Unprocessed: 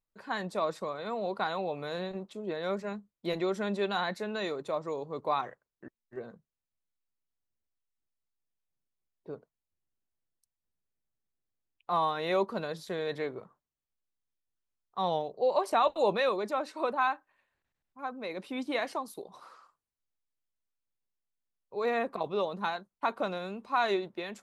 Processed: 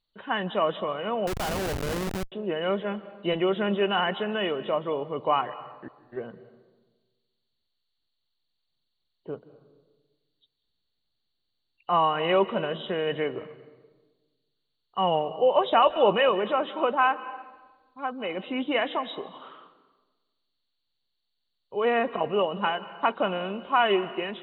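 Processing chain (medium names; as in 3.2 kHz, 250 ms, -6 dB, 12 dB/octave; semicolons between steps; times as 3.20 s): knee-point frequency compression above 2.7 kHz 4:1; reverberation RT60 1.3 s, pre-delay 147 ms, DRR 15 dB; 1.27–2.32 s: Schmitt trigger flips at -35 dBFS; trim +6 dB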